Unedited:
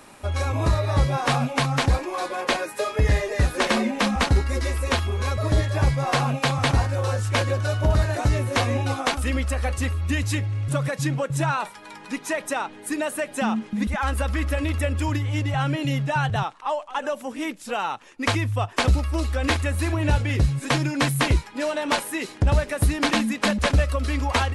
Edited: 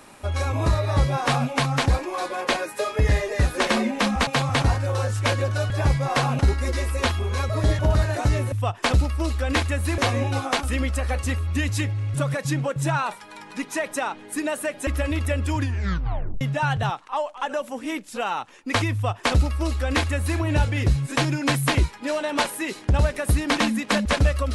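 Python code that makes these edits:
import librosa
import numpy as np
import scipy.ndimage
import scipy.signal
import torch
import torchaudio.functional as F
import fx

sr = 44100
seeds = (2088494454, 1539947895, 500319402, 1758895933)

y = fx.edit(x, sr, fx.swap(start_s=4.27, length_s=1.4, other_s=6.36, other_length_s=1.43),
    fx.cut(start_s=13.41, length_s=0.99),
    fx.tape_stop(start_s=15.12, length_s=0.82),
    fx.duplicate(start_s=18.46, length_s=1.46, to_s=8.52), tone=tone)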